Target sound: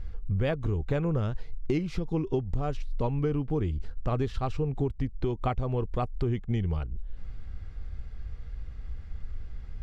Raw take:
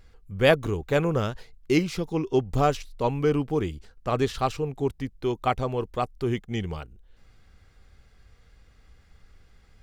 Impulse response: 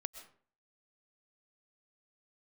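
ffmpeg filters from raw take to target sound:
-af "aemphasis=mode=reproduction:type=bsi,acompressor=threshold=-28dB:ratio=10,volume=3.5dB"

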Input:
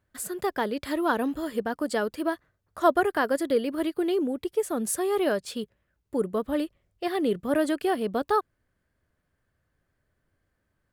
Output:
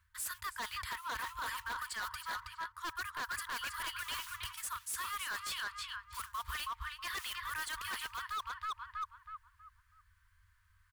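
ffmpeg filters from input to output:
ffmpeg -i in.wav -filter_complex "[0:a]acrossover=split=350[link_01][link_02];[link_02]volume=17dB,asoftclip=hard,volume=-17dB[link_03];[link_01][link_03]amix=inputs=2:normalize=0,acrusher=bits=7:mode=log:mix=0:aa=0.000001,asplit=2[link_04][link_05];[link_05]adelay=322,lowpass=frequency=2200:poles=1,volume=-4dB,asplit=2[link_06][link_07];[link_07]adelay=322,lowpass=frequency=2200:poles=1,volume=0.37,asplit=2[link_08][link_09];[link_09]adelay=322,lowpass=frequency=2200:poles=1,volume=0.37,asplit=2[link_10][link_11];[link_11]adelay=322,lowpass=frequency=2200:poles=1,volume=0.37,asplit=2[link_12][link_13];[link_13]adelay=322,lowpass=frequency=2200:poles=1,volume=0.37[link_14];[link_04][link_06][link_08][link_10][link_12][link_14]amix=inputs=6:normalize=0,afftfilt=real='re*(1-between(b*sr/4096,100,920))':imag='im*(1-between(b*sr/4096,100,920))':win_size=4096:overlap=0.75,areverse,acompressor=threshold=-41dB:ratio=8,areverse,aeval=exprs='0.0112*(abs(mod(val(0)/0.0112+3,4)-2)-1)':channel_layout=same,volume=6dB" out.wav

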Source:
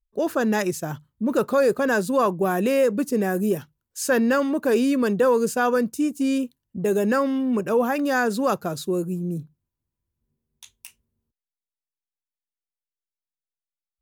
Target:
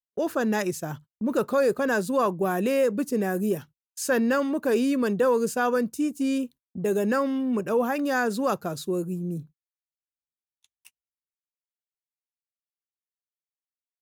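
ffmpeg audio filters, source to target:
ffmpeg -i in.wav -af "agate=range=-35dB:threshold=-41dB:ratio=16:detection=peak,volume=-3dB" out.wav

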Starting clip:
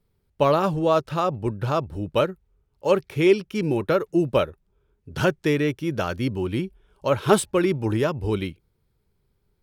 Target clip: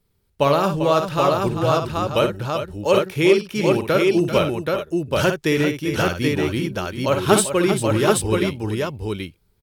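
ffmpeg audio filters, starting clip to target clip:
ffmpeg -i in.wav -filter_complex "[0:a]highshelf=frequency=2600:gain=7,asplit=2[link_01][link_02];[link_02]aecho=0:1:57|393|398|779:0.398|0.316|0.106|0.708[link_03];[link_01][link_03]amix=inputs=2:normalize=0,volume=1dB" out.wav

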